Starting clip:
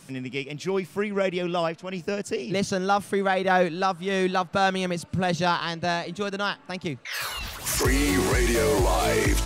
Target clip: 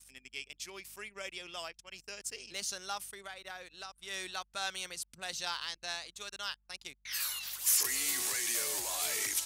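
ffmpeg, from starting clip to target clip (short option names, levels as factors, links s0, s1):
-filter_complex "[0:a]aderivative,asettb=1/sr,asplit=3[s0][s1][s2];[s0]atrim=end=3.024[s3];[s1]atrim=start=3.02:end=3.96,asetpts=PTS-STARTPTS,afade=t=in:d=0.004:c=qsin,afade=t=out:st=0.936:d=0.004:c=qsin,acompressor=threshold=0.00631:ratio=3[s4];[s2]atrim=start=3.956[s5];[s3][s4]acrossfade=d=0.004:c1=hsin:c2=qsin[s6];[s6][s5]acrossfade=d=0.004:c1=qsin:c2=hsin,aeval=exprs='val(0)+0.000447*(sin(2*PI*50*n/s)+sin(2*PI*2*50*n/s)/2+sin(2*PI*3*50*n/s)/3+sin(2*PI*4*50*n/s)/4+sin(2*PI*5*50*n/s)/5)':c=same,anlmdn=0.00158"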